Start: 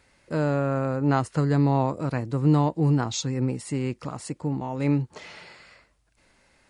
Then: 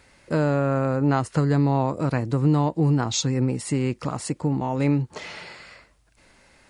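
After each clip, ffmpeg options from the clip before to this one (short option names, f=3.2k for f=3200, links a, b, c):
-af "acompressor=threshold=-26dB:ratio=2,volume=6dB"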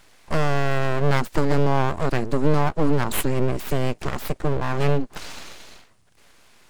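-af "aeval=exprs='abs(val(0))':c=same,volume=3.5dB"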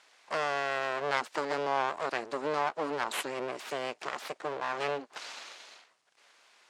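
-af "highpass=600,lowpass=7k,volume=-4dB"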